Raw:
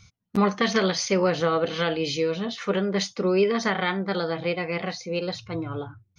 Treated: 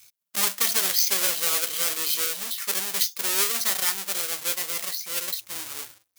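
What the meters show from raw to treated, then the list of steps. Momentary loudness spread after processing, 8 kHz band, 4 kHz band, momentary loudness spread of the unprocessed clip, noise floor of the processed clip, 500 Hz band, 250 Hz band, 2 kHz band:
10 LU, no reading, +4.5 dB, 8 LU, -75 dBFS, -15.0 dB, -19.5 dB, -2.5 dB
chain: square wave that keeps the level; differentiator; trim +5 dB

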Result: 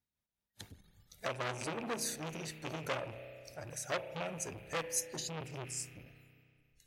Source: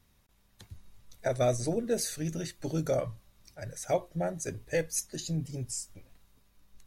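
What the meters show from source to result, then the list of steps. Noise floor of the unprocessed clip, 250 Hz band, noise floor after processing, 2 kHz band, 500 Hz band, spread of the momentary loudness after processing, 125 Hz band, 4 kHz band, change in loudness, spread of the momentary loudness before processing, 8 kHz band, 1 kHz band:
-67 dBFS, -10.0 dB, under -85 dBFS, +1.0 dB, -10.0 dB, 16 LU, -11.0 dB, -1.0 dB, -7.0 dB, 12 LU, -3.5 dB, -2.5 dB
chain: rattle on loud lows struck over -35 dBFS, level -22 dBFS; spectral noise reduction 27 dB; high-pass 90 Hz 6 dB/octave; compression 1.5:1, threshold -46 dBFS, peak gain reduction 8.5 dB; tremolo 4.8 Hz, depth 49%; Butterworth band-stop 1.1 kHz, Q 7.4; spring tank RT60 2.2 s, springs 32 ms, chirp 55 ms, DRR 11 dB; transformer saturation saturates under 2.8 kHz; trim +5.5 dB

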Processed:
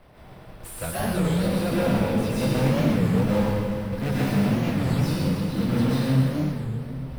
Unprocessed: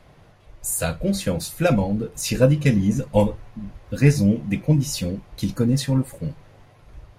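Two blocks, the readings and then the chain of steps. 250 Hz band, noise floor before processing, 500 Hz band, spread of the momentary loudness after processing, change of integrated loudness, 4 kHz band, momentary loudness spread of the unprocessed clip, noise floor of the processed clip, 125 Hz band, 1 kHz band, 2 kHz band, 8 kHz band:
-0.5 dB, -52 dBFS, -2.5 dB, 8 LU, -2.0 dB, -2.0 dB, 14 LU, -45 dBFS, -2.0 dB, +2.0 dB, -0.5 dB, -9.5 dB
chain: block-companded coder 3-bit; peaking EQ 6.8 kHz -14.5 dB 0.26 oct; hum notches 50/100/150 Hz; saturation -18 dBFS, distortion -9 dB; on a send: two-band feedback delay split 470 Hz, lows 274 ms, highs 126 ms, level -9.5 dB; on the sum: plate-style reverb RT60 1.9 s, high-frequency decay 0.95×, pre-delay 105 ms, DRR -8 dB; in parallel at +1.5 dB: compression, threshold -32 dBFS, peak gain reduction 21.5 dB; on the sum: treble shelf 2.9 kHz -10.5 dB; warped record 33 1/3 rpm, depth 250 cents; trim -7.5 dB

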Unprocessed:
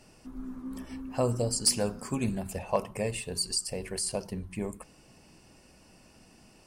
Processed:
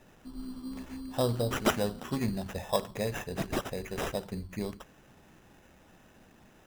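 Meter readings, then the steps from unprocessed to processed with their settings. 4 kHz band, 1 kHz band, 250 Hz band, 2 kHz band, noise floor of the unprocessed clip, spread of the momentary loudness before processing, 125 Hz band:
-5.5 dB, +2.0 dB, 0.0 dB, +4.5 dB, -58 dBFS, 15 LU, -0.5 dB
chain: sample-and-hold 10×; trim -1 dB

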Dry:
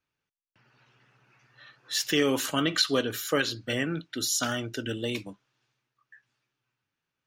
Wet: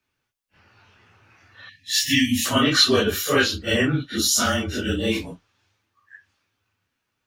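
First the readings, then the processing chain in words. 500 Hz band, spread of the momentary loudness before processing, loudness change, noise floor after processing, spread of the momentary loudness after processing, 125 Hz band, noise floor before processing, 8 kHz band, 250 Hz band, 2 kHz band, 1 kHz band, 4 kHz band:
+5.5 dB, 8 LU, +7.5 dB, -78 dBFS, 9 LU, +9.0 dB, under -85 dBFS, +7.5 dB, +7.5 dB, +8.0 dB, +7.5 dB, +8.0 dB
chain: phase randomisation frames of 100 ms; frequency shift -26 Hz; spectral selection erased 1.69–2.46 s, 290–1700 Hz; trim +8 dB

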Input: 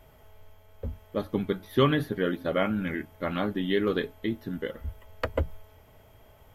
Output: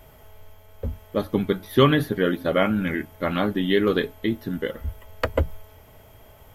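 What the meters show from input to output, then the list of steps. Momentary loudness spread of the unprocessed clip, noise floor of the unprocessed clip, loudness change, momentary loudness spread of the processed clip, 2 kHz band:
12 LU, -56 dBFS, +5.5 dB, 13 LU, +6.0 dB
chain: treble shelf 6.7 kHz +5 dB; trim +5.5 dB

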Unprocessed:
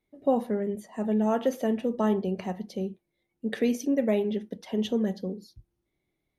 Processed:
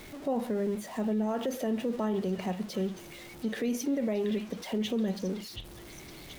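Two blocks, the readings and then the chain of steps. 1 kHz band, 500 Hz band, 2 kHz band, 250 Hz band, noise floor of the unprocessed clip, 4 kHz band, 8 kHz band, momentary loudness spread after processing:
-4.5 dB, -4.5 dB, -1.5 dB, -3.0 dB, -81 dBFS, +2.0 dB, +3.0 dB, 14 LU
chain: jump at every zero crossing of -41 dBFS; on a send: repeats whose band climbs or falls 727 ms, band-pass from 2.9 kHz, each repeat 0.7 oct, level -6.5 dB; on the sum: peak limiter -23 dBFS, peak gain reduction 9 dB

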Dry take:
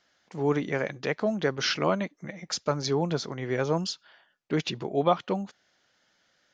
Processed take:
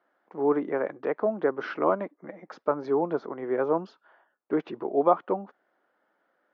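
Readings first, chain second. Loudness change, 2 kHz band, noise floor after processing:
+0.5 dB, -5.0 dB, -74 dBFS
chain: Chebyshev band-pass 310–1200 Hz, order 2; trim +3 dB

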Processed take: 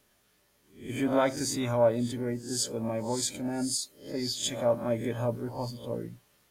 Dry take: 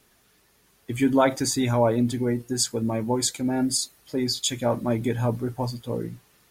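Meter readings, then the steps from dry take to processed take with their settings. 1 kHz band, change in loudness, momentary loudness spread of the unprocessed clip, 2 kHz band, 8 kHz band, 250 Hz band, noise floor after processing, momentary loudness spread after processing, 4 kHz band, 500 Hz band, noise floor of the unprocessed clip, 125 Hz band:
-6.0 dB, -5.5 dB, 9 LU, -5.5 dB, -5.5 dB, -7.5 dB, -68 dBFS, 11 LU, -5.5 dB, -3.0 dB, -62 dBFS, -7.5 dB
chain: reverse spectral sustain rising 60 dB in 0.42 s; small resonant body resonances 580/3100 Hz, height 10 dB, ringing for 85 ms; trim -8 dB

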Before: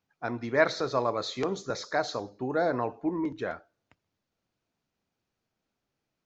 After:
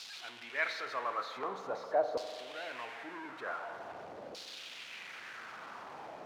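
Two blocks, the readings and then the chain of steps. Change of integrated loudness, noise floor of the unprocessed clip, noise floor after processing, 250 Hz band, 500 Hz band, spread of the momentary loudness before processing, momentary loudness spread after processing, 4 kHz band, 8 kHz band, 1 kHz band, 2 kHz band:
-9.5 dB, -84 dBFS, -49 dBFS, -18.5 dB, -8.5 dB, 10 LU, 13 LU, -4.5 dB, no reading, -5.0 dB, -4.5 dB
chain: jump at every zero crossing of -30 dBFS; LFO band-pass saw down 0.46 Hz 500–4400 Hz; spring tank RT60 2.2 s, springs 42 ms, chirp 50 ms, DRR 9 dB; trim -1 dB

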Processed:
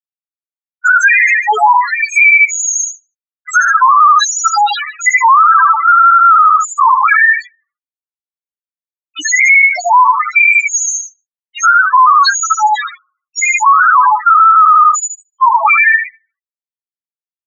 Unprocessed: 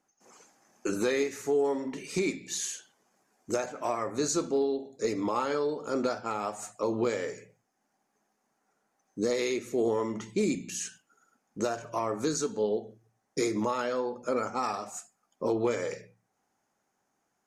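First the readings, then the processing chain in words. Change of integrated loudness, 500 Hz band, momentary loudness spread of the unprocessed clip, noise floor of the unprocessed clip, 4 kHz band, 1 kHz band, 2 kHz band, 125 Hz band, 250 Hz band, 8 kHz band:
+23.0 dB, -3.5 dB, 9 LU, -78 dBFS, +18.5 dB, +29.5 dB, +33.0 dB, under -40 dB, under -15 dB, +21.5 dB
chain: local Wiener filter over 15 samples; treble shelf 2.3 kHz +11 dB; bit crusher 7-bit; inverse Chebyshev high-pass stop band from 190 Hz, stop band 80 dB; feedback delay 75 ms, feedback 38%, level -5 dB; waveshaping leveller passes 5; saturation -23.5 dBFS, distortion -9 dB; loudest bins only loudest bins 2; low-pass 5.1 kHz 24 dB/octave; loudness maximiser +34 dB; trim -1 dB

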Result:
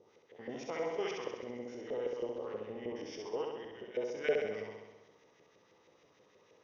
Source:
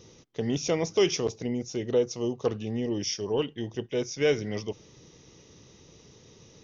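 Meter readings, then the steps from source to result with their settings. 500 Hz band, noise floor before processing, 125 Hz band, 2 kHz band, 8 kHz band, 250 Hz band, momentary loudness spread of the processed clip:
-9.0 dB, -56 dBFS, -21.5 dB, -6.5 dB, no reading, -15.0 dB, 12 LU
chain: spectrogram pixelated in time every 100 ms; LFO band-pass saw up 6.3 Hz 480–2200 Hz; flutter echo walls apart 11.3 m, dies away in 1.1 s

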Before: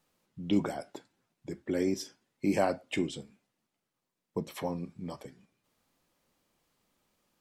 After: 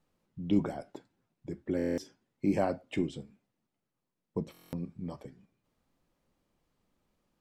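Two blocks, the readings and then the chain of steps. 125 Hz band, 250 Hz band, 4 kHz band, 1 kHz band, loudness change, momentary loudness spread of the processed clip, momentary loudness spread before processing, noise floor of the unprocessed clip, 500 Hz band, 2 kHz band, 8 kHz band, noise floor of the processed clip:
+1.5 dB, 0.0 dB, -7.5 dB, -3.5 dB, -1.0 dB, 21 LU, 17 LU, -85 dBFS, -1.5 dB, -5.0 dB, -9.5 dB, under -85 dBFS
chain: tilt EQ -2 dB/octave; buffer glitch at 1.77/4.52 s, samples 1024, times 8; trim -3.5 dB

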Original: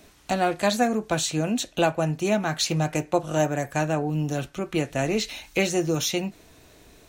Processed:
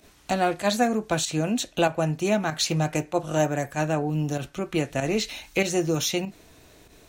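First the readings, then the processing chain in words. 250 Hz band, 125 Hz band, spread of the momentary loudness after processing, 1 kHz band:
0.0 dB, 0.0 dB, 4 LU, -0.5 dB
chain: volume shaper 96 bpm, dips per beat 1, -10 dB, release 74 ms

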